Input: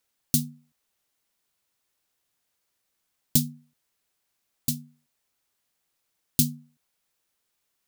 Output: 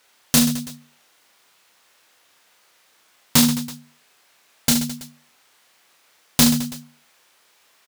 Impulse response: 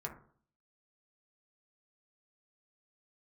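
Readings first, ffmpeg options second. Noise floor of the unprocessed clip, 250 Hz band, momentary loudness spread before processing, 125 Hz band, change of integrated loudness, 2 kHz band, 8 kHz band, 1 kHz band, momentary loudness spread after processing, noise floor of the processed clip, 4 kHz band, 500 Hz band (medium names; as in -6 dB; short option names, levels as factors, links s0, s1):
-78 dBFS, +12.0 dB, 12 LU, +4.5 dB, +8.0 dB, +24.5 dB, +9.5 dB, no reading, 19 LU, -60 dBFS, +14.0 dB, +17.0 dB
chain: -filter_complex "[0:a]asplit=2[s0][s1];[s1]highpass=f=720:p=1,volume=15.8,asoftclip=type=tanh:threshold=0.668[s2];[s0][s2]amix=inputs=2:normalize=0,lowpass=f=2900:p=1,volume=0.501,aecho=1:1:30|72|130.8|213.1|328.4:0.631|0.398|0.251|0.158|0.1,volume=1.88"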